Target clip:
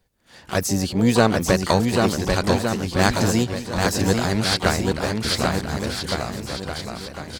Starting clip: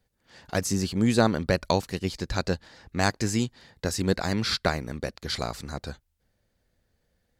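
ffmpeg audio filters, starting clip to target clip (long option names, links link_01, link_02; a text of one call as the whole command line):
ffmpeg -i in.wav -filter_complex "[0:a]aecho=1:1:790|1462|2032|2517|2930:0.631|0.398|0.251|0.158|0.1,asplit=3[link_01][link_02][link_03];[link_02]asetrate=66075,aresample=44100,atempo=0.66742,volume=-17dB[link_04];[link_03]asetrate=88200,aresample=44100,atempo=0.5,volume=-11dB[link_05];[link_01][link_04][link_05]amix=inputs=3:normalize=0,volume=4.5dB" out.wav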